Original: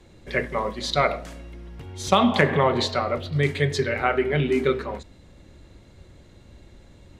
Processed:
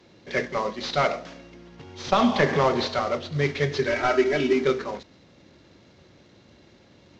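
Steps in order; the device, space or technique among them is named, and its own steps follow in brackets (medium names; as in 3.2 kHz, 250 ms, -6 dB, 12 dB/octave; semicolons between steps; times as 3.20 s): early wireless headset (high-pass 150 Hz 12 dB/octave; CVSD coder 32 kbps); 3.87–4.53 s: comb 3.1 ms, depth 74%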